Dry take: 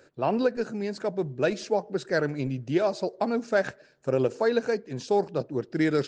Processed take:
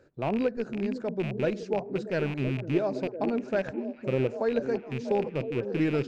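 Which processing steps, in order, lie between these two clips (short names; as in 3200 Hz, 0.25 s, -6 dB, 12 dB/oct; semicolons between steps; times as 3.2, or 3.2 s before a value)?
rattling part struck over -34 dBFS, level -20 dBFS; tilt -2.5 dB/oct; delay with a stepping band-pass 0.508 s, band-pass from 260 Hz, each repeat 0.7 oct, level -5 dB; gain -6 dB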